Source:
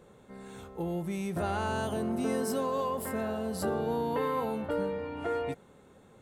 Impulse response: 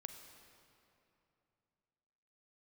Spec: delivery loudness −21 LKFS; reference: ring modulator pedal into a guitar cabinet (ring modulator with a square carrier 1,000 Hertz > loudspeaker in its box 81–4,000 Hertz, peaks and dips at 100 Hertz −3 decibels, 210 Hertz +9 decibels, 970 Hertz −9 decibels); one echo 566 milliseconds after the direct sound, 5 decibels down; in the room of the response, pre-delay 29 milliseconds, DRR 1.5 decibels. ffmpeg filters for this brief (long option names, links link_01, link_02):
-filter_complex "[0:a]aecho=1:1:566:0.562,asplit=2[link_01][link_02];[1:a]atrim=start_sample=2205,adelay=29[link_03];[link_02][link_03]afir=irnorm=-1:irlink=0,volume=2.5dB[link_04];[link_01][link_04]amix=inputs=2:normalize=0,aeval=exprs='val(0)*sgn(sin(2*PI*1000*n/s))':channel_layout=same,highpass=81,equalizer=frequency=100:width_type=q:width=4:gain=-3,equalizer=frequency=210:width_type=q:width=4:gain=9,equalizer=frequency=970:width_type=q:width=4:gain=-9,lowpass=frequency=4000:width=0.5412,lowpass=frequency=4000:width=1.3066,volume=8.5dB"